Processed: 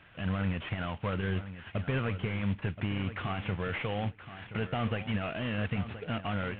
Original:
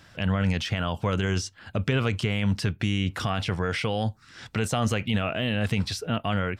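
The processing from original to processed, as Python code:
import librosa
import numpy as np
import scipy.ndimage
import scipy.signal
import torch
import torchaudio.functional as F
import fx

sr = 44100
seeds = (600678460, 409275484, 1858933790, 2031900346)

p1 = fx.cvsd(x, sr, bps=16000)
p2 = fx.high_shelf(p1, sr, hz=2500.0, db=8.5)
p3 = p2 + fx.echo_feedback(p2, sr, ms=1025, feedback_pct=15, wet_db=-12.5, dry=0)
y = F.gain(torch.from_numpy(p3), -6.0).numpy()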